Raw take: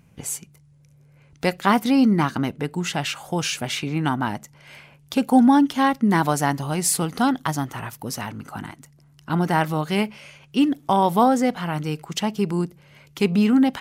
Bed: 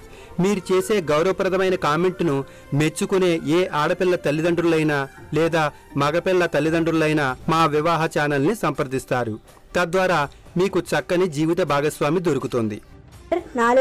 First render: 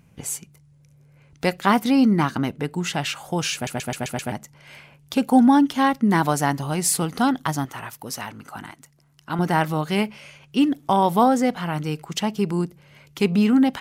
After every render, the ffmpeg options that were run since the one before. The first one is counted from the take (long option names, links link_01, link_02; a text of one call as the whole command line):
ffmpeg -i in.wav -filter_complex "[0:a]asettb=1/sr,asplit=3[link_01][link_02][link_03];[link_01]atrim=end=7.654[link_04];[link_02]atrim=start=7.65:end=9.39,asetpts=PTS-STARTPTS,afade=type=in:duration=0.004:curve=qsin,afade=type=out:start_time=1.736:duration=0.004:curve=qsin,lowshelf=frequency=350:gain=-8[link_05];[link_03]atrim=start=9.386[link_06];[link_04][link_05]acrossfade=duration=0.004:curve1=hsin:curve2=qsin[link_07];[link_07][link_06]acrossfade=duration=0.004:curve1=qsin:curve2=hsin,asplit=7[link_08][link_09][link_10][link_11][link_12][link_13][link_14];[link_08]atrim=end=3.672[link_15];[link_09]atrim=start=3.538:end=3.672[link_16];[link_10]atrim=start=3.538:end=3.672[link_17];[link_11]atrim=start=3.538:end=3.672[link_18];[link_12]atrim=start=3.538:end=3.672[link_19];[link_13]atrim=start=3.538:end=3.672[link_20];[link_14]atrim=start=4.318[link_21];[link_15][link_16]acrossfade=duration=0.004:curve1=hsin:curve2=hsin[link_22];[link_22][link_17]acrossfade=duration=0.004:curve1=hsin:curve2=hsin[link_23];[link_23][link_18]acrossfade=duration=0.004:curve1=hsin:curve2=hsin[link_24];[link_24][link_19]acrossfade=duration=0.004:curve1=hsin:curve2=hsin[link_25];[link_25][link_20]acrossfade=duration=0.004:curve1=hsin:curve2=hsin[link_26];[link_26][link_21]acrossfade=duration=0.004:curve1=hsin:curve2=hsin" out.wav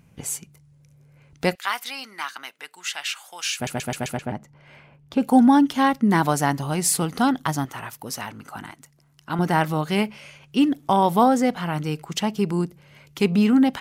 ffmpeg -i in.wav -filter_complex "[0:a]asettb=1/sr,asplit=3[link_01][link_02][link_03];[link_01]atrim=end=1.554[link_04];[link_02]atrim=start=1.55:end=3.6,asetpts=PTS-STARTPTS,afade=type=in:duration=0.004:curve=qsin,afade=type=out:start_time=2.046:duration=0.004:curve=qsin,highpass=1500[link_05];[link_03]atrim=start=3.596[link_06];[link_04][link_05]acrossfade=duration=0.004:curve1=hsin:curve2=qsin[link_07];[link_07][link_06]acrossfade=duration=0.004:curve1=qsin:curve2=hsin,asplit=3[link_08][link_09][link_10];[link_08]afade=type=out:start_time=4.16:duration=0.02[link_11];[link_09]lowpass=frequency=1300:poles=1,afade=type=in:start_time=4.16:duration=0.02,afade=type=out:start_time=5.2:duration=0.02[link_12];[link_10]afade=type=in:start_time=5.2:duration=0.02[link_13];[link_11][link_12][link_13]amix=inputs=3:normalize=0" out.wav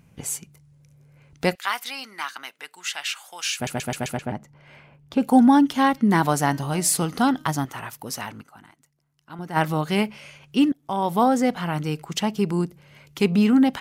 ffmpeg -i in.wav -filter_complex "[0:a]asplit=3[link_01][link_02][link_03];[link_01]afade=type=out:start_time=5.96:duration=0.02[link_04];[link_02]bandreject=frequency=309.6:width_type=h:width=4,bandreject=frequency=619.2:width_type=h:width=4,bandreject=frequency=928.8:width_type=h:width=4,bandreject=frequency=1238.4:width_type=h:width=4,bandreject=frequency=1548:width_type=h:width=4,bandreject=frequency=1857.6:width_type=h:width=4,bandreject=frequency=2167.2:width_type=h:width=4,bandreject=frequency=2476.8:width_type=h:width=4,bandreject=frequency=2786.4:width_type=h:width=4,bandreject=frequency=3096:width_type=h:width=4,bandreject=frequency=3405.6:width_type=h:width=4,bandreject=frequency=3715.2:width_type=h:width=4,bandreject=frequency=4024.8:width_type=h:width=4,bandreject=frequency=4334.4:width_type=h:width=4,bandreject=frequency=4644:width_type=h:width=4,bandreject=frequency=4953.6:width_type=h:width=4,bandreject=frequency=5263.2:width_type=h:width=4,bandreject=frequency=5572.8:width_type=h:width=4,bandreject=frequency=5882.4:width_type=h:width=4,bandreject=frequency=6192:width_type=h:width=4,bandreject=frequency=6501.6:width_type=h:width=4,afade=type=in:start_time=5.96:duration=0.02,afade=type=out:start_time=7.48:duration=0.02[link_05];[link_03]afade=type=in:start_time=7.48:duration=0.02[link_06];[link_04][link_05][link_06]amix=inputs=3:normalize=0,asplit=4[link_07][link_08][link_09][link_10];[link_07]atrim=end=8.55,asetpts=PTS-STARTPTS,afade=type=out:start_time=8.41:duration=0.14:curve=exp:silence=0.237137[link_11];[link_08]atrim=start=8.55:end=9.43,asetpts=PTS-STARTPTS,volume=-12.5dB[link_12];[link_09]atrim=start=9.43:end=10.72,asetpts=PTS-STARTPTS,afade=type=in:duration=0.14:curve=exp:silence=0.237137,afade=type=out:start_time=1.286:duration=0.004:curve=hsin:silence=0.0749894[link_13];[link_10]atrim=start=10.72,asetpts=PTS-STARTPTS,afade=type=in:duration=0.9:curve=qsin:silence=0.0749894[link_14];[link_11][link_12][link_13][link_14]concat=n=4:v=0:a=1" out.wav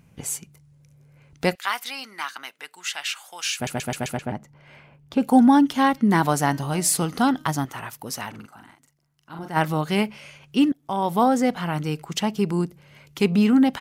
ffmpeg -i in.wav -filter_complex "[0:a]asplit=3[link_01][link_02][link_03];[link_01]afade=type=out:start_time=8.33:duration=0.02[link_04];[link_02]asplit=2[link_05][link_06];[link_06]adelay=43,volume=-3.5dB[link_07];[link_05][link_07]amix=inputs=2:normalize=0,afade=type=in:start_time=8.33:duration=0.02,afade=type=out:start_time=9.47:duration=0.02[link_08];[link_03]afade=type=in:start_time=9.47:duration=0.02[link_09];[link_04][link_08][link_09]amix=inputs=3:normalize=0" out.wav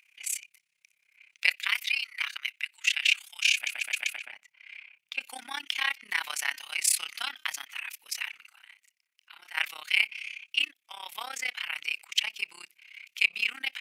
ffmpeg -i in.wav -af "tremolo=f=33:d=0.919,highpass=frequency=2400:width_type=q:width=4.9" out.wav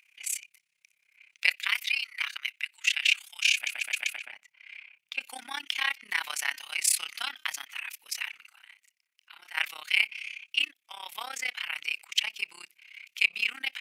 ffmpeg -i in.wav -af anull out.wav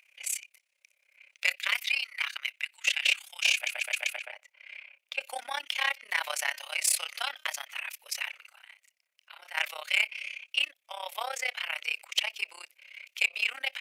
ffmpeg -i in.wav -af "asoftclip=type=tanh:threshold=-14.5dB,highpass=frequency=570:width_type=q:width=5.8" out.wav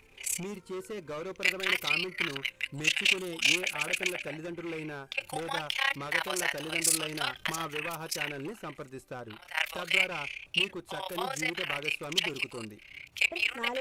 ffmpeg -i in.wav -i bed.wav -filter_complex "[1:a]volume=-19.5dB[link_01];[0:a][link_01]amix=inputs=2:normalize=0" out.wav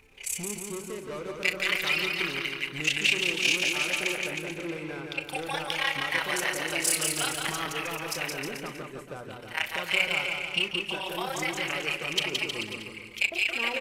ffmpeg -i in.wav -filter_complex "[0:a]asplit=2[link_01][link_02];[link_02]adelay=39,volume=-13dB[link_03];[link_01][link_03]amix=inputs=2:normalize=0,aecho=1:1:170|314.5|437.3|541.7|630.5:0.631|0.398|0.251|0.158|0.1" out.wav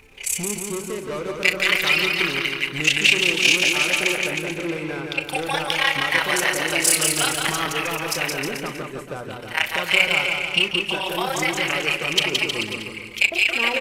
ffmpeg -i in.wav -af "volume=8dB" out.wav